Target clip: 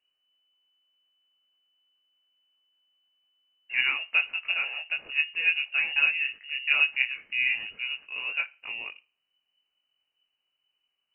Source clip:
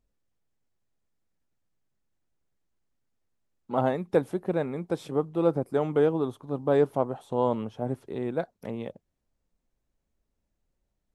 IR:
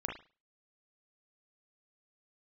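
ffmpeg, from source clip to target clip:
-filter_complex "[0:a]crystalizer=i=6:c=0,flanger=delay=20:depth=2.8:speed=2.5,asplit=2[s0][s1];[1:a]atrim=start_sample=2205,asetrate=39690,aresample=44100[s2];[s1][s2]afir=irnorm=-1:irlink=0,volume=0.119[s3];[s0][s3]amix=inputs=2:normalize=0,lowpass=f=2600:t=q:w=0.5098,lowpass=f=2600:t=q:w=0.6013,lowpass=f=2600:t=q:w=0.9,lowpass=f=2600:t=q:w=2.563,afreqshift=-3000"

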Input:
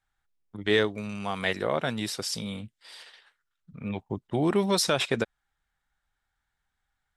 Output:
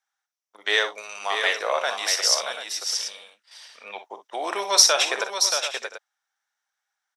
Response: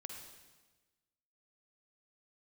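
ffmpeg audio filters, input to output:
-af "agate=range=0.447:threshold=0.00355:ratio=16:detection=peak,highpass=f=590:w=0.5412,highpass=f=590:w=1.3066,equalizer=f=5800:w=4.5:g=13,aecho=1:1:45|60|628|703|736:0.237|0.237|0.473|0.106|0.237,volume=1.88"

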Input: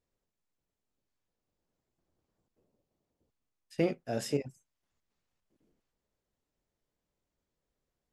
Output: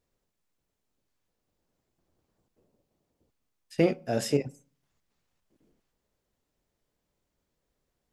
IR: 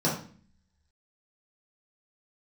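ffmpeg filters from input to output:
-filter_complex "[0:a]asplit=2[s0][s1];[s1]lowshelf=f=380:g=-8.5[s2];[1:a]atrim=start_sample=2205,adelay=33[s3];[s2][s3]afir=irnorm=-1:irlink=0,volume=0.0237[s4];[s0][s4]amix=inputs=2:normalize=0,volume=1.88"

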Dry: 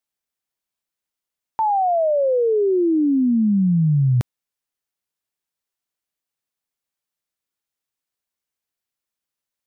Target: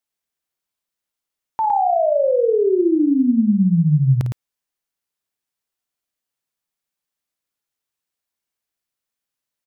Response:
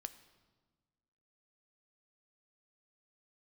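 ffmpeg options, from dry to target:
-af "aecho=1:1:52.48|110.8:0.355|0.501"

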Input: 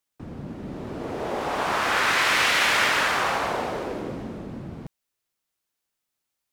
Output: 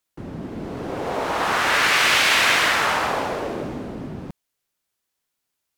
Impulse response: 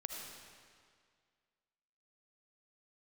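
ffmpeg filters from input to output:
-af "asetrate=49833,aresample=44100,volume=1.5"

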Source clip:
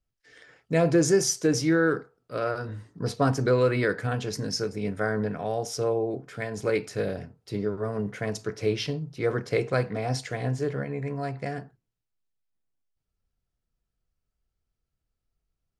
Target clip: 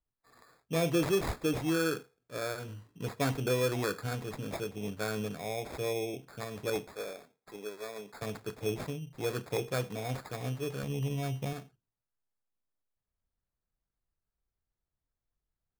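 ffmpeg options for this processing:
-filter_complex "[0:a]asettb=1/sr,asplit=3[s0][s1][s2];[s0]atrim=end=6.874[s3];[s1]atrim=start=6.87:end=8.22,asetpts=PTS-STARTPTS,afade=t=in:d=0.004:c=qsin,afade=t=out:st=1.346:d=0.004:c=qsin,highpass=460[s4];[s2]atrim=start=8.216[s5];[s3][s4]acrossfade=d=0.004:c1=hsin:c2=qsin[s6];[s6][s5]acrossfade=d=0.004:c1=qsin:c2=hsin,asettb=1/sr,asplit=3[s7][s8][s9];[s7]atrim=end=10.834[s10];[s8]atrim=start=10.83:end=11.53,asetpts=PTS-STARTPTS,afade=t=in:d=0.004:c=qsin,afade=t=out:st=0.696:d=0.004:c=qsin,aemphasis=mode=reproduction:type=bsi[s11];[s9]atrim=start=11.526[s12];[s10][s11]acrossfade=d=0.004:c1=hsin:c2=qsin[s13];[s13][s12]acrossfade=d=0.004:c1=qsin:c2=hsin,acrusher=samples=15:mix=1:aa=0.000001,volume=0.422"

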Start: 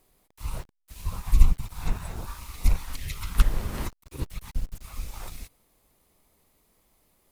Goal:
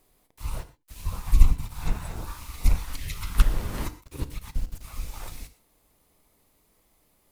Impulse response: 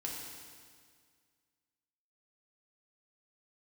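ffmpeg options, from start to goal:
-filter_complex "[0:a]asplit=2[s0][s1];[1:a]atrim=start_sample=2205,atrim=end_sample=6174[s2];[s1][s2]afir=irnorm=-1:irlink=0,volume=0.501[s3];[s0][s3]amix=inputs=2:normalize=0,volume=0.794"

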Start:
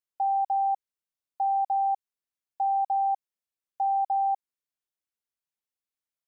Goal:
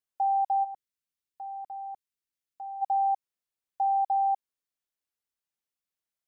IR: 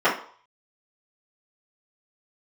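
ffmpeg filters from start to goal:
-filter_complex "[0:a]asplit=3[s0][s1][s2];[s0]afade=t=out:st=0.63:d=0.02[s3];[s1]equalizer=f=770:t=o:w=0.94:g=-13,afade=t=in:st=0.63:d=0.02,afade=t=out:st=2.81:d=0.02[s4];[s2]afade=t=in:st=2.81:d=0.02[s5];[s3][s4][s5]amix=inputs=3:normalize=0"

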